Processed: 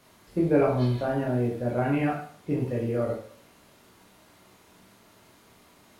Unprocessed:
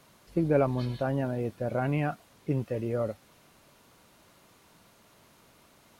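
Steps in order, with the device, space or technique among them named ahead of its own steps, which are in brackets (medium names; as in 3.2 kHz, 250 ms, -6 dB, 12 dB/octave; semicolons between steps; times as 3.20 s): bathroom (reverberation RT60 0.55 s, pre-delay 15 ms, DRR -3 dB); trim -1.5 dB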